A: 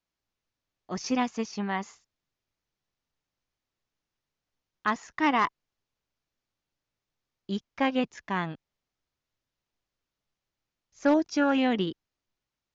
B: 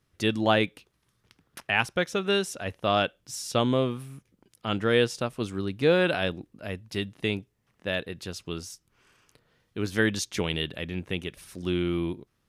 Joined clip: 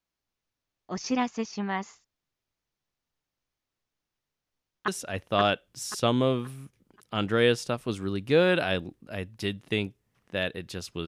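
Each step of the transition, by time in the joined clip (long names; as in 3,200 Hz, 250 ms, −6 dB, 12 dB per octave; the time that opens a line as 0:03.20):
A
0:04.47–0:04.88: delay throw 530 ms, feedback 35%, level −2 dB
0:04.88: continue with B from 0:02.40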